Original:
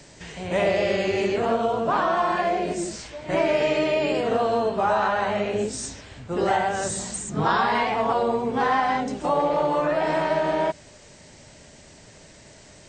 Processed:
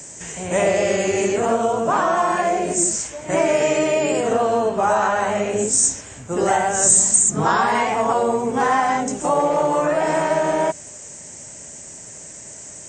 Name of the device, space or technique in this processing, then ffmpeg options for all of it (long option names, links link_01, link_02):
budget condenser microphone: -filter_complex "[0:a]asettb=1/sr,asplit=3[link_01][link_02][link_03];[link_01]atrim=end=4.334[link_04];[link_02]atrim=start=4.33:end=4.83,asetpts=PTS-STARTPTS,afade=type=in:duration=0.004:curve=qsin,afade=type=out:start_time=0.496:duration=0.004:curve=qsin,lowpass=6300[link_05];[link_03]atrim=start=4.826[link_06];[link_04][link_05]acrossfade=duration=0.004:curve1=hsin:curve2=qsin[link_07];[link_07][link_06]acrossfade=duration=0.004:curve1=qsin:curve2=hsin,highpass=frequency=94:poles=1,highshelf=frequency=5500:width_type=q:width=3:gain=9,volume=4dB"